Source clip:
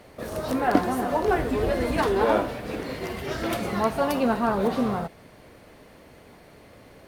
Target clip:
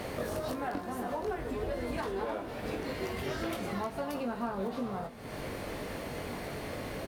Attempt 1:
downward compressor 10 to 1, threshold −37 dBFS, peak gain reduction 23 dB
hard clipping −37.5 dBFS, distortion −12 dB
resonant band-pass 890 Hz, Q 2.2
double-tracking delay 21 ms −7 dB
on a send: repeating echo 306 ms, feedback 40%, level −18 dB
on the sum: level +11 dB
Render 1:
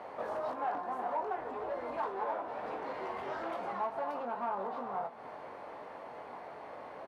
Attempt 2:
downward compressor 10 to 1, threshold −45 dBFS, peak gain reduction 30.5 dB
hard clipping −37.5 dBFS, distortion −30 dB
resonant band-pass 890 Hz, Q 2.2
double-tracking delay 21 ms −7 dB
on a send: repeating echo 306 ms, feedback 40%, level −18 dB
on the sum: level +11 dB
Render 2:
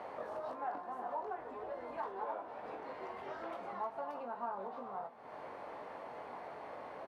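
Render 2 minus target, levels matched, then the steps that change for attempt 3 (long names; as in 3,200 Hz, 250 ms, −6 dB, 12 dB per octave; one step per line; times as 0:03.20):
1,000 Hz band +5.5 dB
remove: resonant band-pass 890 Hz, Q 2.2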